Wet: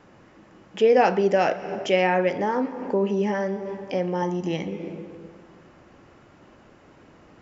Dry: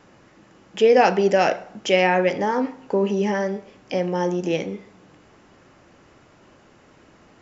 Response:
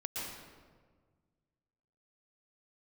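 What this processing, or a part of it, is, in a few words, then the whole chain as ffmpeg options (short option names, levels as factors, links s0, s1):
ducked reverb: -filter_complex "[0:a]asplit=3[s0][s1][s2];[1:a]atrim=start_sample=2205[s3];[s1][s3]afir=irnorm=-1:irlink=0[s4];[s2]apad=whole_len=326927[s5];[s4][s5]sidechaincompress=threshold=0.0178:ratio=8:attack=22:release=176,volume=0.531[s6];[s0][s6]amix=inputs=2:normalize=0,highshelf=f=3600:g=-7.5,asettb=1/sr,asplit=3[s7][s8][s9];[s7]atrim=end=4.224[s10];[s8]atrim=start=4.22:end=4.68,asetpts=PTS-STARTPTS,afade=t=in:d=0.004:c=qsin,afade=t=out:st=0.456:d=0.004:c=qsin,aecho=1:1:1:0.52,atrim=end_sample=20286[s11];[s9]atrim=start=4.676[s12];[s10][s11]acrossfade=d=0.004:c1=hsin:c2=qsin[s13];[s13][s12]acrossfade=d=0.004:c1=qsin:c2=hsin,volume=0.75"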